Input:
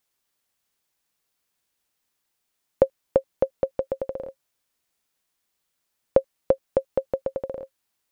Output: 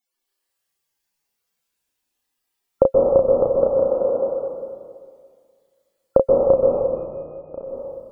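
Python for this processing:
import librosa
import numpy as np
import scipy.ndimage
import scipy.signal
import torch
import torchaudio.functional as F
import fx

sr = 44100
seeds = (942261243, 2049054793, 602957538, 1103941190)

y = fx.highpass(x, sr, hz=180.0, slope=12, at=(3.45, 4.28))
y = fx.octave_resonator(y, sr, note='D#', decay_s=0.5, at=(6.52, 7.5), fade=0.02)
y = fx.spec_topn(y, sr, count=64)
y = fx.doubler(y, sr, ms=33.0, db=-3)
y = fx.rev_plate(y, sr, seeds[0], rt60_s=2.0, hf_ratio=0.95, predelay_ms=120, drr_db=-3.0)
y = y * librosa.db_to_amplitude(2.5)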